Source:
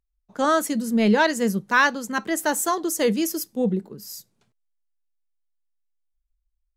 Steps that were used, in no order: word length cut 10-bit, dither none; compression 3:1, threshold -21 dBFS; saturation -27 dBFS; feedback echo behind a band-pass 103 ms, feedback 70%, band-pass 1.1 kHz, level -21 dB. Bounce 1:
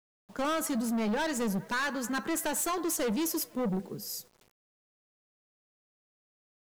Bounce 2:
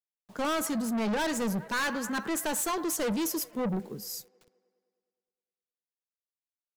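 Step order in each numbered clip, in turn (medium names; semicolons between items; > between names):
compression > feedback echo behind a band-pass > saturation > word length cut; word length cut > feedback echo behind a band-pass > saturation > compression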